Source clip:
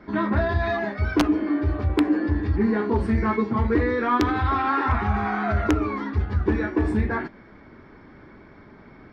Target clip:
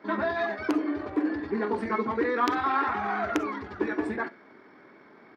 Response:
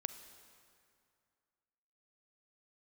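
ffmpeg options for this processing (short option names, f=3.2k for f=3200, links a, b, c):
-filter_complex "[0:a]atempo=1.7,highpass=320[a];[1:a]atrim=start_sample=2205,atrim=end_sample=3087[b];[a][b]afir=irnorm=-1:irlink=0"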